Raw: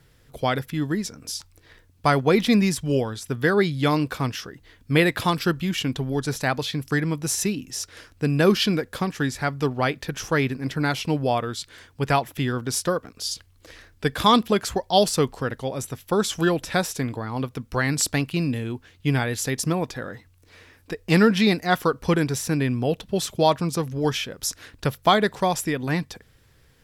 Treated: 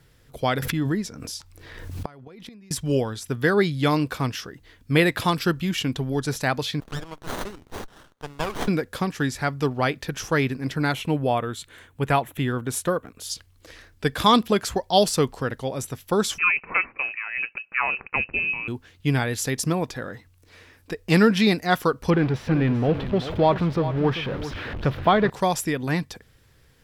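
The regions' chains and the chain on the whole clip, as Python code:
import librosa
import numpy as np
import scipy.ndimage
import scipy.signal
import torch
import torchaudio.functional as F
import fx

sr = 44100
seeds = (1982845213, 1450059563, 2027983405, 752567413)

y = fx.chain(x, sr, fx.high_shelf(hz=3100.0, db=-4.5),
    fx.gate_flip(shuts_db=-14.0, range_db=-29),
    fx.pre_swell(db_per_s=39.0), at=(0.62, 2.71))
y = fx.chain(y, sr, fx.highpass(hz=1000.0, slope=12),
    fx.running_max(window=17), at=(6.8, 8.68))
y = fx.chain(y, sr, fx.peak_eq(hz=5200.0, db=-11.5, octaves=0.55),
    fx.notch(hz=4700.0, q=17.0), at=(10.92, 13.3))
y = fx.chain(y, sr, fx.highpass(hz=170.0, slope=24),
    fx.freq_invert(carrier_hz=2800), at=(16.38, 18.68))
y = fx.chain(y, sr, fx.zero_step(step_db=-25.0),
    fx.air_absorb(metres=370.0),
    fx.echo_single(ms=390, db=-12.0), at=(22.1, 25.3))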